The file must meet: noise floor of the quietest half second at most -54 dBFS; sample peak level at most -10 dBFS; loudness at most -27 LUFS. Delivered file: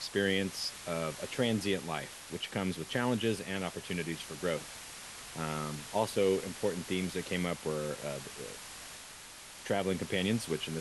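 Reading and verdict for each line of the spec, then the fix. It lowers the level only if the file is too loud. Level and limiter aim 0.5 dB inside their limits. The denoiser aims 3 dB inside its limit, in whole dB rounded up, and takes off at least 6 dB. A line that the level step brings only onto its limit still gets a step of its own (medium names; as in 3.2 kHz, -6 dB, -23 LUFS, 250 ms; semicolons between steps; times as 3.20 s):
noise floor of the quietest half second -50 dBFS: fail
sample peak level -17.0 dBFS: pass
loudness -34.5 LUFS: pass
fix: noise reduction 7 dB, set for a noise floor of -50 dBFS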